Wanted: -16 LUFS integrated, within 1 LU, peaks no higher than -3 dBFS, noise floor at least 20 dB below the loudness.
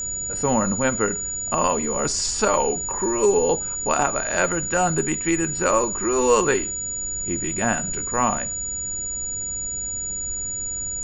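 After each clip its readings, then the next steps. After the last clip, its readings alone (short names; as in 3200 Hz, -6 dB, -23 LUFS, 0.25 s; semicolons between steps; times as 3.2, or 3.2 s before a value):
steady tone 6900 Hz; tone level -26 dBFS; noise floor -29 dBFS; noise floor target -42 dBFS; loudness -22.0 LUFS; peak -4.5 dBFS; loudness target -16.0 LUFS
-> notch 6900 Hz, Q 30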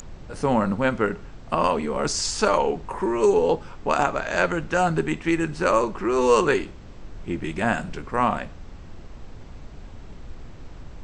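steady tone none; noise floor -42 dBFS; noise floor target -44 dBFS
-> noise print and reduce 6 dB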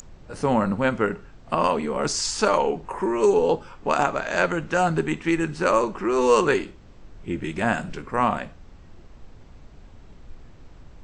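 noise floor -47 dBFS; loudness -23.5 LUFS; peak -5.5 dBFS; loudness target -16.0 LUFS
-> gain +7.5 dB; limiter -3 dBFS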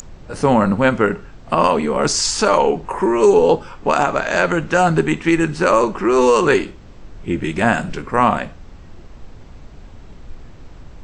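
loudness -16.5 LUFS; peak -3.0 dBFS; noise floor -40 dBFS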